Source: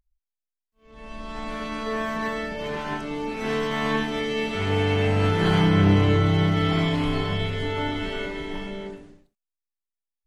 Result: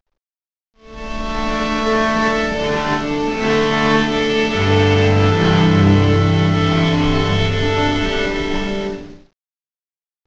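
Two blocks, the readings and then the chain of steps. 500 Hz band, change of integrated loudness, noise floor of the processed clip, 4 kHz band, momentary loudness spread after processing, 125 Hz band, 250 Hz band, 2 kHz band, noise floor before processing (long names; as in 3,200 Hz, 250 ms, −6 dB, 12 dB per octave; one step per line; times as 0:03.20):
+9.0 dB, +8.0 dB, below −85 dBFS, +9.5 dB, 9 LU, +7.0 dB, +8.0 dB, +9.5 dB, below −85 dBFS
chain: variable-slope delta modulation 32 kbit/s
automatic gain control gain up to 14 dB
level −1 dB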